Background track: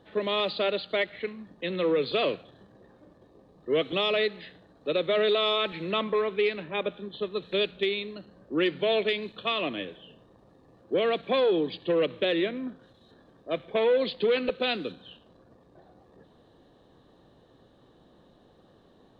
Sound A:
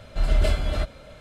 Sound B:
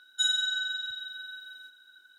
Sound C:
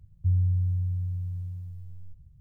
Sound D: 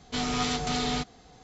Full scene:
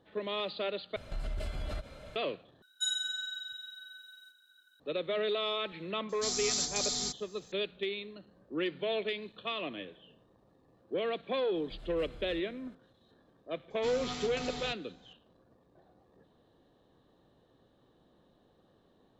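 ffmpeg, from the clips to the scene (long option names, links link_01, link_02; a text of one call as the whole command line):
ffmpeg -i bed.wav -i cue0.wav -i cue1.wav -i cue2.wav -i cue3.wav -filter_complex "[1:a]asplit=2[link_01][link_02];[4:a]asplit=2[link_03][link_04];[0:a]volume=-8dB[link_05];[link_01]acompressor=threshold=-29dB:ratio=6:attack=3.2:release=140:knee=1:detection=peak[link_06];[2:a]aemphasis=mode=production:type=cd[link_07];[link_03]aexciter=amount=9.9:drive=5.2:freq=4100[link_08];[link_02]acompressor=threshold=-27dB:ratio=6:attack=3.2:release=140:knee=1:detection=peak[link_09];[link_05]asplit=3[link_10][link_11][link_12];[link_10]atrim=end=0.964[link_13];[link_06]atrim=end=1.2,asetpts=PTS-STARTPTS,volume=-4dB[link_14];[link_11]atrim=start=2.156:end=2.624[link_15];[link_07]atrim=end=2.18,asetpts=PTS-STARTPTS,volume=-9.5dB[link_16];[link_12]atrim=start=4.796[link_17];[link_08]atrim=end=1.43,asetpts=PTS-STARTPTS,volume=-14.5dB,afade=type=in:duration=0.004:curve=hsin,afade=type=out:start_time=1.426:duration=0.004:curve=hsin,adelay=6090[link_18];[link_09]atrim=end=1.2,asetpts=PTS-STARTPTS,volume=-17.5dB,afade=type=in:duration=0.004:curve=hsin,afade=type=out:start_time=1.196:duration=0.004:curve=hsin,adelay=11550[link_19];[link_04]atrim=end=1.43,asetpts=PTS-STARTPTS,volume=-11.5dB,afade=type=in:duration=0.004:curve=hsin,afade=type=out:start_time=1.426:duration=0.004:curve=hsin,adelay=13700[link_20];[link_13][link_14]acrossfade=duration=0.004:curve1=hsin:curve2=hsin[link_21];[link_21][link_15]acrossfade=duration=0.004:curve1=hsin:curve2=hsin[link_22];[link_22][link_16]acrossfade=duration=0.004:curve1=hsin:curve2=hsin[link_23];[link_23][link_17]acrossfade=duration=0.004:curve1=hsin:curve2=hsin[link_24];[link_24][link_18][link_19][link_20]amix=inputs=4:normalize=0" out.wav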